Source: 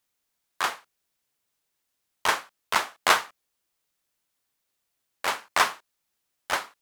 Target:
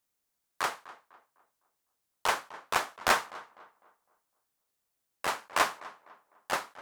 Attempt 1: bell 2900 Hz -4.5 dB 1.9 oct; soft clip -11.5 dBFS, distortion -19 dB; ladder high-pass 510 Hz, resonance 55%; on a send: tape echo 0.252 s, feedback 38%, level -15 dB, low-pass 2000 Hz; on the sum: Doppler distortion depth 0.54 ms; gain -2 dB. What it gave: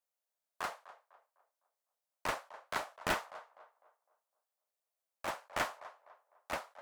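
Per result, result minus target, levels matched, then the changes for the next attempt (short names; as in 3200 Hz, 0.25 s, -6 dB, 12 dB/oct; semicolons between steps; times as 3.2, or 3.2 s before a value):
soft clip: distortion +10 dB; 500 Hz band +3.0 dB
change: soft clip -5.5 dBFS, distortion -29 dB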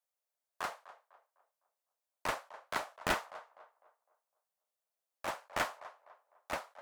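500 Hz band +2.5 dB
remove: ladder high-pass 510 Hz, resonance 55%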